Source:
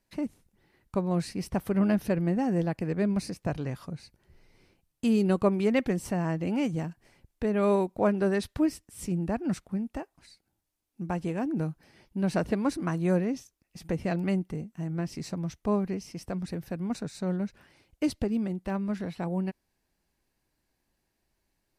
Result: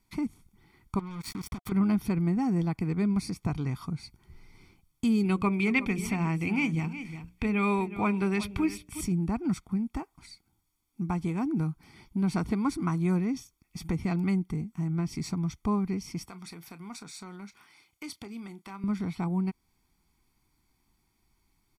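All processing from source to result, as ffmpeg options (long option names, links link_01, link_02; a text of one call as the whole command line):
ffmpeg -i in.wav -filter_complex "[0:a]asettb=1/sr,asplit=3[link_01][link_02][link_03];[link_01]atrim=end=0.994[link_04];[link_02]atrim=start=0.99:end=1.72,asetpts=PTS-STARTPTS,afade=type=in:duration=0.004:curve=qsin,afade=type=out:start_time=0.726:duration=0.004:curve=qsin,acompressor=threshold=-37dB:ratio=10:attack=3.2:release=140:knee=1:detection=peak,acrusher=bits=6:mix=0:aa=0.5,bandreject=frequency=710:width=15[link_05];[link_03]atrim=start=1.716[link_06];[link_04][link_05]acrossfade=duration=0.004:curve1=hsin:curve2=qsin[link_07];[link_07][link_06]acrossfade=duration=0.004:curve1=qsin:curve2=hsin,asettb=1/sr,asplit=3[link_08][link_09][link_10];[link_08]atrim=end=5.234[link_11];[link_09]atrim=start=5.23:end=9.01,asetpts=PTS-STARTPTS,afade=type=in:duration=0.004:curve=qsin,afade=type=out:start_time=3.776:duration=0.004:curve=qsin,equalizer=frequency=2500:width_type=o:width=0.6:gain=13,bandreject=frequency=60:width_type=h:width=6,bandreject=frequency=120:width_type=h:width=6,bandreject=frequency=180:width_type=h:width=6,bandreject=frequency=240:width_type=h:width=6,bandreject=frequency=300:width_type=h:width=6,bandreject=frequency=360:width_type=h:width=6,bandreject=frequency=420:width_type=h:width=6,bandreject=frequency=480:width_type=h:width=6,bandreject=frequency=540:width_type=h:width=6,bandreject=frequency=600:width_type=h:width=6,aecho=1:1:363:0.168,atrim=end_sample=166698[link_12];[link_10]atrim=start=9.006[link_13];[link_11][link_12]acrossfade=duration=0.004:curve1=hsin:curve2=qsin[link_14];[link_14][link_13]acrossfade=duration=0.004:curve1=qsin:curve2=hsin,asettb=1/sr,asplit=3[link_15][link_16][link_17];[link_15]atrim=end=16.274[link_18];[link_16]atrim=start=16.27:end=18.84,asetpts=PTS-STARTPTS,afade=type=in:duration=0.004:curve=qsin,afade=type=out:start_time=2.566:duration=0.004:curve=qsin,highpass=frequency=1100:poles=1,acompressor=threshold=-46dB:ratio=2:attack=3.2:release=140:knee=1:detection=peak,asplit=2[link_19][link_20];[link_20]adelay=30,volume=-13.5dB[link_21];[link_19][link_21]amix=inputs=2:normalize=0,atrim=end_sample=113337[link_22];[link_17]atrim=start=18.836[link_23];[link_18][link_22]acrossfade=duration=0.004:curve1=hsin:curve2=qsin[link_24];[link_24][link_23]acrossfade=duration=0.004:curve1=qsin:curve2=hsin,aecho=1:1:0.9:0.83,acompressor=threshold=-36dB:ratio=1.5,volume=2.5dB" out.wav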